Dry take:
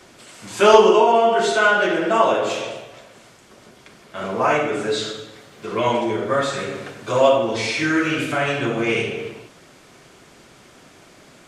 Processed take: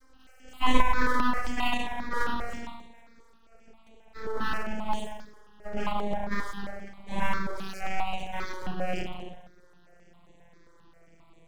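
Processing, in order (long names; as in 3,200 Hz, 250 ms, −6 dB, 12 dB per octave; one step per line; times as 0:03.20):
vocoder with a gliding carrier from C4, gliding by −8 semitones
full-wave rectification
step-sequenced phaser 7.5 Hz 730–5,100 Hz
level −4 dB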